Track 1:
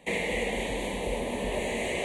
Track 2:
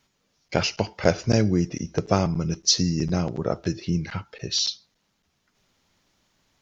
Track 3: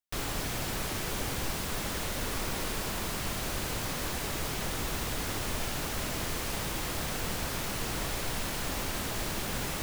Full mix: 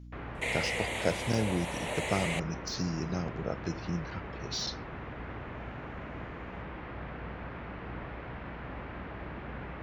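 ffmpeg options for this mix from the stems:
-filter_complex "[0:a]highpass=700,adelay=350,volume=-1dB[a];[1:a]deesser=0.5,volume=-9.5dB[b];[2:a]lowpass=f=2.2k:w=0.5412,lowpass=f=2.2k:w=1.3066,volume=-5.5dB[c];[a][b][c]amix=inputs=3:normalize=0,highpass=59,aeval=exprs='val(0)+0.00501*(sin(2*PI*60*n/s)+sin(2*PI*2*60*n/s)/2+sin(2*PI*3*60*n/s)/3+sin(2*PI*4*60*n/s)/4+sin(2*PI*5*60*n/s)/5)':c=same"

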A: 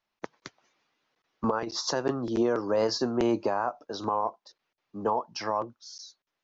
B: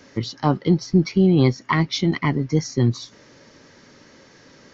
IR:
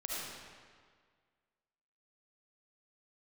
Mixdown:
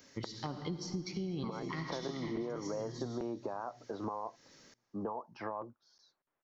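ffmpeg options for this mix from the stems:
-filter_complex "[0:a]lowpass=1.5k,alimiter=limit=-22dB:level=0:latency=1:release=474,volume=-0.5dB,asplit=2[a][b];[1:a]aemphasis=mode=production:type=75kf,volume=-16.5dB,asplit=3[c][d][e];[d]volume=-7.5dB[f];[e]volume=-22.5dB[g];[b]apad=whole_len=208950[h];[c][h]sidechaincompress=threshold=-47dB:ratio=8:attack=36:release=230[i];[2:a]atrim=start_sample=2205[j];[f][j]afir=irnorm=-1:irlink=0[k];[g]aecho=0:1:484|968|1452|1936:1|0.29|0.0841|0.0244[l];[a][i][k][l]amix=inputs=4:normalize=0,acompressor=threshold=-35dB:ratio=6"

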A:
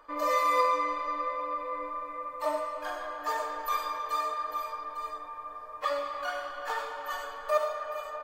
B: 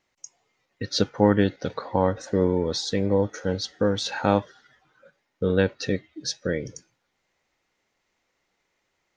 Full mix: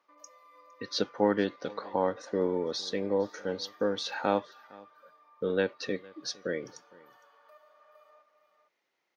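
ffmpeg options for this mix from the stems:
-filter_complex "[0:a]acompressor=threshold=-39dB:ratio=4,aeval=exprs='val(0)+0.000224*(sin(2*PI*60*n/s)+sin(2*PI*2*60*n/s)/2+sin(2*PI*3*60*n/s)/3+sin(2*PI*4*60*n/s)/4+sin(2*PI*5*60*n/s)/5)':c=same,volume=-19dB,asplit=2[a][b];[b]volume=-7.5dB[c];[1:a]volume=-5dB,asplit=2[d][e];[e]volume=-23.5dB[f];[c][f]amix=inputs=2:normalize=0,aecho=0:1:459:1[g];[a][d][g]amix=inputs=3:normalize=0,highpass=260,equalizer=f=7.6k:t=o:w=0.41:g=-12"

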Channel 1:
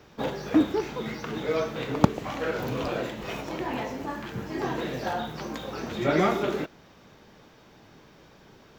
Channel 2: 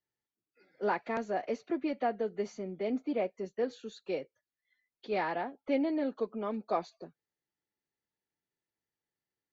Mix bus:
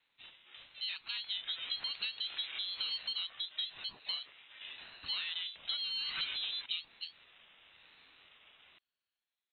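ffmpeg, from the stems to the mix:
-filter_complex "[0:a]highpass=f=640:w=0.5412,highpass=f=640:w=1.3066,asoftclip=type=tanh:threshold=-20dB,volume=4.5dB,afade=t=in:st=1.07:d=0.57:silence=0.298538,afade=t=out:st=2.96:d=0.35:silence=0.375837,afade=t=in:st=5.57:d=0.59:silence=0.298538[a];[1:a]acompressor=threshold=-39dB:ratio=8,volume=2.5dB,asplit=2[b][c];[c]apad=whole_len=387318[d];[a][d]sidechaincompress=threshold=-50dB:ratio=10:attack=27:release=156[e];[e][b]amix=inputs=2:normalize=0,dynaudnorm=f=280:g=7:m=4dB,lowpass=f=3.4k:t=q:w=0.5098,lowpass=f=3.4k:t=q:w=0.6013,lowpass=f=3.4k:t=q:w=0.9,lowpass=f=3.4k:t=q:w=2.563,afreqshift=-4000,aeval=exprs='val(0)*sin(2*PI*420*n/s+420*0.45/1*sin(2*PI*1*n/s))':c=same"

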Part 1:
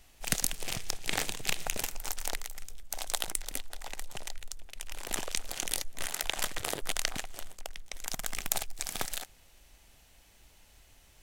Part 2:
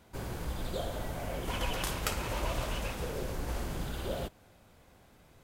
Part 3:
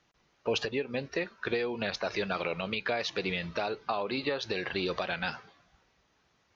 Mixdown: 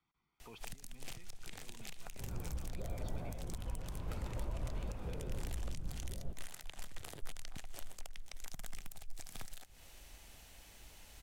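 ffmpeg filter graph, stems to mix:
-filter_complex "[0:a]acompressor=threshold=-44dB:ratio=1.5,adelay=400,volume=3dB[a];[1:a]tiltshelf=f=1.4k:g=7.5,adelay=2050,volume=-9.5dB[b];[2:a]aecho=1:1:0.9:0.84,alimiter=level_in=2.5dB:limit=-24dB:level=0:latency=1:release=409,volume=-2.5dB,lowpass=3.9k,volume=-16.5dB,asplit=2[c][d];[d]apad=whole_len=512700[e];[a][e]sidechaincompress=threshold=-59dB:ratio=3:attack=16:release=263[f];[f][b][c]amix=inputs=3:normalize=0,acrossover=split=180[g][h];[h]acompressor=threshold=-45dB:ratio=6[i];[g][i]amix=inputs=2:normalize=0,alimiter=level_in=5dB:limit=-24dB:level=0:latency=1:release=234,volume=-5dB"

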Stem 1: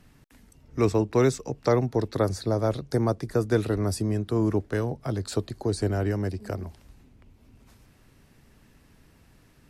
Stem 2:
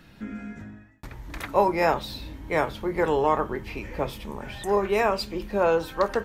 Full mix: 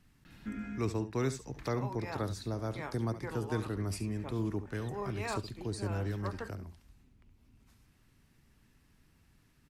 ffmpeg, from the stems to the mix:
-filter_complex "[0:a]volume=-8.5dB,asplit=3[a][b][c];[b]volume=-12.5dB[d];[1:a]highshelf=f=8.6k:g=-5.5,adelay=250,volume=-3dB[e];[c]apad=whole_len=286605[f];[e][f]sidechaincompress=threshold=-42dB:ratio=6:attack=6.1:release=595[g];[d]aecho=0:1:70:1[h];[a][g][h]amix=inputs=3:normalize=0,equalizer=f=550:t=o:w=1.2:g=-7"

